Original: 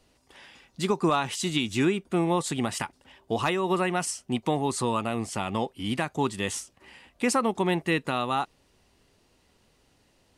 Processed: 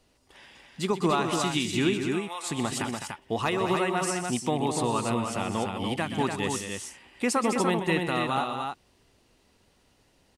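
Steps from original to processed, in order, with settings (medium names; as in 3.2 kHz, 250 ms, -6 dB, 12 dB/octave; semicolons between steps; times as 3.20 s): 1.99–2.46 s: high-pass 1.3 kHz 12 dB/octave; loudspeakers at several distances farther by 43 m -12 dB, 71 m -8 dB, 100 m -5 dB; trim -1.5 dB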